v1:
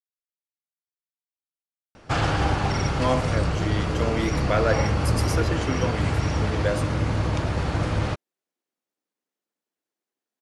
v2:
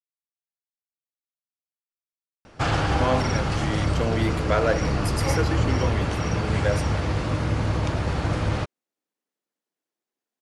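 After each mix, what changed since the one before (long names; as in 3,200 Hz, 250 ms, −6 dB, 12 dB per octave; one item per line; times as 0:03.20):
background: entry +0.50 s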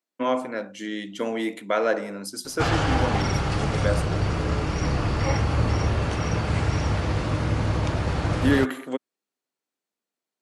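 speech: entry −2.80 s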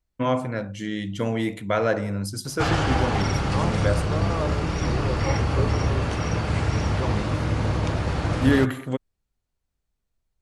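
first voice: remove high-pass filter 240 Hz 24 dB per octave
second voice: unmuted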